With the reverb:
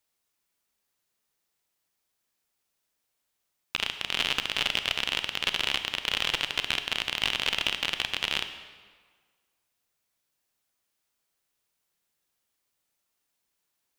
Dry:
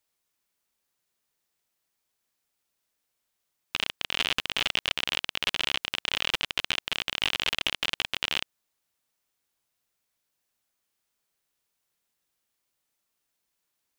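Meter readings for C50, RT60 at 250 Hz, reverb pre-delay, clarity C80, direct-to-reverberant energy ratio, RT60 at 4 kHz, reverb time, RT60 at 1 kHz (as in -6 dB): 10.0 dB, 1.5 s, 28 ms, 11.0 dB, 9.0 dB, 1.2 s, 1.6 s, 1.6 s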